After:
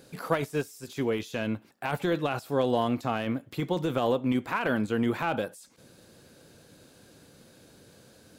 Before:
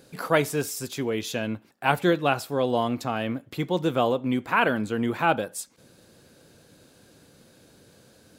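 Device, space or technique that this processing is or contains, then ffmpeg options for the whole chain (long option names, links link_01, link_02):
de-esser from a sidechain: -filter_complex "[0:a]asplit=2[link_01][link_02];[link_02]highpass=5600,apad=whole_len=369587[link_03];[link_01][link_03]sidechaincompress=threshold=-46dB:ratio=12:attack=0.89:release=28"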